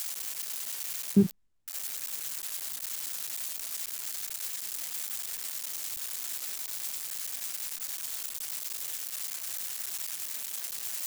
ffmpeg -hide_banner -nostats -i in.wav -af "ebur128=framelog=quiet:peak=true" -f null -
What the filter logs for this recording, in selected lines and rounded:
Integrated loudness:
  I:         -32.8 LUFS
  Threshold: -42.8 LUFS
Loudness range:
  LRA:         1.8 LU
  Threshold: -53.1 LUFS
  LRA low:   -33.4 LUFS
  LRA high:  -31.6 LUFS
True peak:
  Peak:      -11.2 dBFS